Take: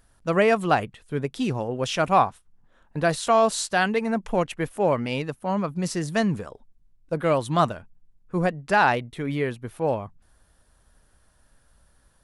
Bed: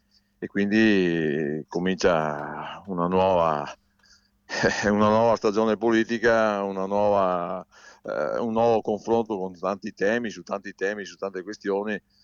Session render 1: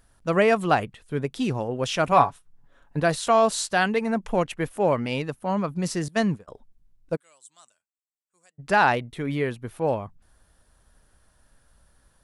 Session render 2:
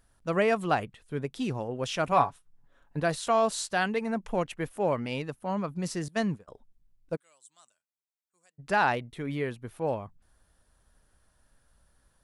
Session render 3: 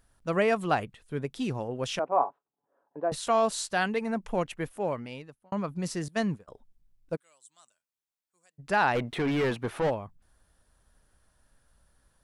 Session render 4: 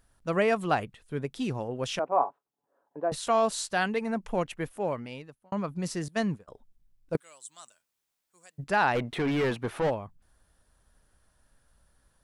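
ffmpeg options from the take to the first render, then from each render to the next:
ffmpeg -i in.wav -filter_complex "[0:a]asettb=1/sr,asplit=3[link_01][link_02][link_03];[link_01]atrim=end=2.114[link_04];[link_02]atrim=start=2.11:end=3,asetpts=PTS-STARTPTS,afade=type=in:duration=0.004:curve=qsin,afade=type=out:start_time=0.886:duration=0.004:curve=qsin,aecho=1:1:7.1:0.51,atrim=end_sample=39249[link_05];[link_03]atrim=start=2.996[link_06];[link_04][link_05]acrossfade=duration=0.004:curve1=hsin:curve2=qsin[link_07];[link_07][link_06]acrossfade=duration=0.004:curve1=qsin:curve2=hsin,asettb=1/sr,asplit=3[link_08][link_09][link_10];[link_08]atrim=end=6.084[link_11];[link_09]atrim=start=6.08:end=6.48,asetpts=PTS-STARTPTS,afade=type=in:duration=0.004:curve=qsin,afade=type=out:start_time=0.396:duration=0.004:curve=qsin,agate=range=-33dB:threshold=-23dB:ratio=3:release=100:detection=peak[link_12];[link_10]atrim=start=6.476[link_13];[link_11][link_12]acrossfade=duration=0.004:curve1=hsin:curve2=qsin[link_14];[link_14][link_13]acrossfade=duration=0.004:curve1=qsin:curve2=hsin,asplit=3[link_15][link_16][link_17];[link_15]afade=type=out:start_time=7.15:duration=0.02[link_18];[link_16]bandpass=frequency=7800:width_type=q:width=7.1,afade=type=in:start_time=7.15:duration=0.02,afade=type=out:start_time=8.58:duration=0.02[link_19];[link_17]afade=type=in:start_time=8.58:duration=0.02[link_20];[link_18][link_19][link_20]amix=inputs=3:normalize=0" out.wav
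ffmpeg -i in.wav -af "volume=-5.5dB" out.wav
ffmpeg -i in.wav -filter_complex "[0:a]asettb=1/sr,asplit=3[link_01][link_02][link_03];[link_01]atrim=end=1.994[link_04];[link_02]atrim=start=1.99:end=3.12,asetpts=PTS-STARTPTS,afade=type=in:duration=0.004:curve=qsin,afade=type=out:start_time=1.126:duration=0.004:curve=qsin,asuperpass=centerf=580:order=4:qfactor=0.89[link_05];[link_03]atrim=start=3.116[link_06];[link_04][link_05]acrossfade=duration=0.004:curve1=hsin:curve2=qsin[link_07];[link_07][link_06]acrossfade=duration=0.004:curve1=qsin:curve2=hsin,asplit=3[link_08][link_09][link_10];[link_08]afade=type=out:start_time=8.94:duration=0.02[link_11];[link_09]asplit=2[link_12][link_13];[link_13]highpass=frequency=720:poles=1,volume=28dB,asoftclip=type=tanh:threshold=-19dB[link_14];[link_12][link_14]amix=inputs=2:normalize=0,lowpass=frequency=1500:poles=1,volume=-6dB,afade=type=in:start_time=8.94:duration=0.02,afade=type=out:start_time=9.89:duration=0.02[link_15];[link_10]afade=type=in:start_time=9.89:duration=0.02[link_16];[link_11][link_15][link_16]amix=inputs=3:normalize=0,asplit=2[link_17][link_18];[link_17]atrim=end=5.52,asetpts=PTS-STARTPTS,afade=type=out:start_time=4.57:duration=0.95[link_19];[link_18]atrim=start=5.52,asetpts=PTS-STARTPTS,afade=type=in:duration=0.004:curve=hsin[link_20];[link_19][link_20]concat=n=2:v=0:a=1" out.wav
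ffmpeg -i in.wav -filter_complex "[0:a]asplit=3[link_01][link_02][link_03];[link_01]atrim=end=7.152[link_04];[link_02]atrim=start=7.148:end=8.642,asetpts=PTS-STARTPTS,volume=10dB[link_05];[link_03]atrim=start=8.638[link_06];[link_04][link_05]acrossfade=duration=0.004:curve1=hsin:curve2=hsin[link_07];[link_07][link_06]acrossfade=duration=0.004:curve1=hsin:curve2=hsin" out.wav

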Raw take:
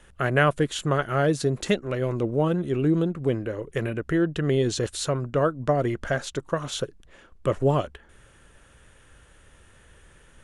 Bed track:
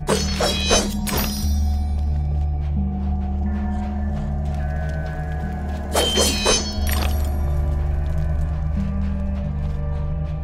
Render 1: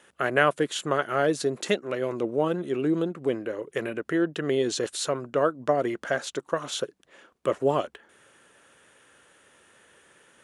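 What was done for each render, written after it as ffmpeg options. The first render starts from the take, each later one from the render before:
ffmpeg -i in.wav -af "highpass=270" out.wav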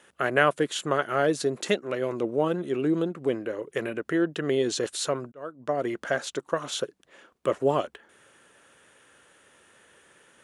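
ffmpeg -i in.wav -filter_complex "[0:a]asplit=2[link_01][link_02];[link_01]atrim=end=5.32,asetpts=PTS-STARTPTS,afade=type=out:start_time=5.316:duration=0.004:curve=hsin[link_03];[link_02]atrim=start=5.32,asetpts=PTS-STARTPTS,afade=type=in:duration=0.65[link_04];[link_03][link_04]concat=n=2:v=0:a=1" out.wav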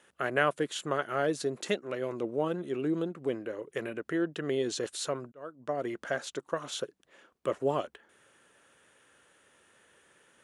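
ffmpeg -i in.wav -af "volume=-5.5dB" out.wav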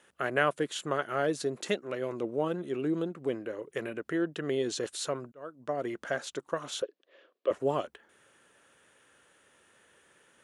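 ffmpeg -i in.wav -filter_complex "[0:a]asettb=1/sr,asplit=3[link_01][link_02][link_03];[link_01]atrim=end=6.824[link_04];[link_02]atrim=start=6.82:end=7.51,asetpts=PTS-STARTPTS,afade=type=in:duration=0.004:curve=qsin,afade=type=out:start_time=0.686:duration=0.004:curve=qsin,highpass=frequency=320:width=0.5412,highpass=frequency=320:width=1.3066,equalizer=frequency=550:width_type=q:width=4:gain=6,equalizer=frequency=870:width_type=q:width=4:gain=-10,equalizer=frequency=1400:width_type=q:width=4:gain=-6,equalizer=frequency=2200:width_type=q:width=4:gain=-4,lowpass=frequency=4300:width=0.5412,lowpass=frequency=4300:width=1.3066[link_05];[link_03]atrim=start=7.506[link_06];[link_04][link_05]acrossfade=duration=0.004:curve1=hsin:curve2=qsin[link_07];[link_07][link_06]acrossfade=duration=0.004:curve1=qsin:curve2=hsin" out.wav

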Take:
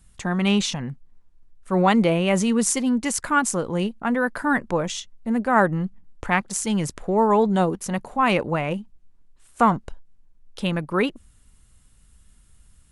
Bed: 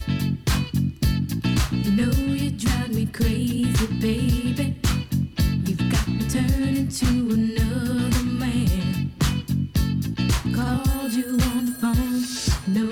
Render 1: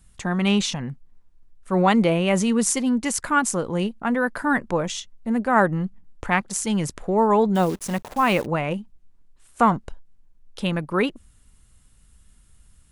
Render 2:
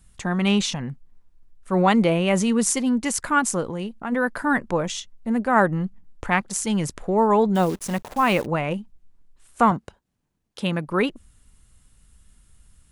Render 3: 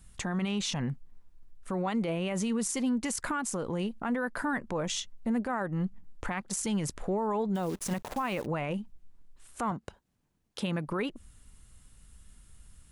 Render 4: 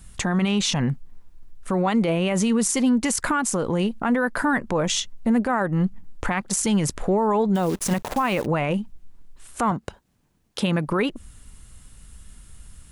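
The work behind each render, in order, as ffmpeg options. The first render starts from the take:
ffmpeg -i in.wav -filter_complex "[0:a]asettb=1/sr,asplit=3[link_01][link_02][link_03];[link_01]atrim=end=7.554[link_04];[link_02]atrim=start=7.55:end=8.46,asetpts=PTS-STARTPTS,afade=type=in:duration=0.004:curve=qsin,afade=type=out:start_time=0.906:duration=0.004:curve=qsin,acrusher=bits=7:dc=4:mix=0:aa=0.000001[link_05];[link_03]atrim=start=8.456[link_06];[link_04][link_05]acrossfade=duration=0.004:curve1=hsin:curve2=qsin[link_07];[link_07][link_06]acrossfade=duration=0.004:curve1=qsin:curve2=hsin" out.wav
ffmpeg -i in.wav -filter_complex "[0:a]asplit=3[link_01][link_02][link_03];[link_01]afade=type=out:start_time=3.7:duration=0.02[link_04];[link_02]acompressor=threshold=-29dB:ratio=2:attack=3.2:release=140:knee=1:detection=peak,afade=type=in:start_time=3.7:duration=0.02,afade=type=out:start_time=4.11:duration=0.02[link_05];[link_03]afade=type=in:start_time=4.11:duration=0.02[link_06];[link_04][link_05][link_06]amix=inputs=3:normalize=0,asettb=1/sr,asplit=3[link_07][link_08][link_09];[link_07]atrim=end=9.714[link_10];[link_08]atrim=start=9.71:end=10.88,asetpts=PTS-STARTPTS,afade=type=in:duration=0.004:curve=qsin,afade=type=out:start_time=1.166:duration=0.004:curve=qsin,highpass=92[link_11];[link_09]atrim=start=10.876[link_12];[link_10][link_11]acrossfade=duration=0.004:curve1=hsin:curve2=qsin[link_13];[link_13][link_12]acrossfade=duration=0.004:curve1=qsin:curve2=hsin" out.wav
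ffmpeg -i in.wav -af "acompressor=threshold=-26dB:ratio=6,alimiter=limit=-23dB:level=0:latency=1:release=21" out.wav
ffmpeg -i in.wav -af "volume=9.5dB" out.wav

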